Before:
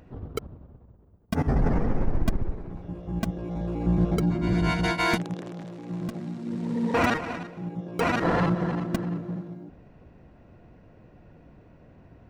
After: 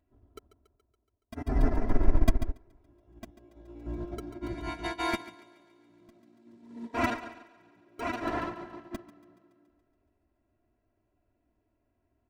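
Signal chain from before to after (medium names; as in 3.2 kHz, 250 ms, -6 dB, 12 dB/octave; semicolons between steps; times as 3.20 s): comb 3 ms, depth 92%; on a send: thinning echo 141 ms, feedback 63%, high-pass 190 Hz, level -7 dB; on the sum: upward expansion 2.5:1, over -30 dBFS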